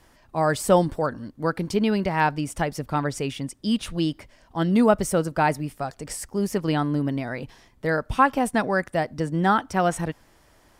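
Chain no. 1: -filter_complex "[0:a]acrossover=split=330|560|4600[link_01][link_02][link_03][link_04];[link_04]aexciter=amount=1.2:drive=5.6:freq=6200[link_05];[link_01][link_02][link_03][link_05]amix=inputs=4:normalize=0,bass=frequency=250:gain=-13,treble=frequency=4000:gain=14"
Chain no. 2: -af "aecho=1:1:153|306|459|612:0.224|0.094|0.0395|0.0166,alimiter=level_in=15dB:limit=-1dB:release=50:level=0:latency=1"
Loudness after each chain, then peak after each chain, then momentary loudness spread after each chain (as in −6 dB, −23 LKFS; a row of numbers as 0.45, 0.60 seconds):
−23.5, −12.5 LKFS; −4.5, −1.0 dBFS; 13, 7 LU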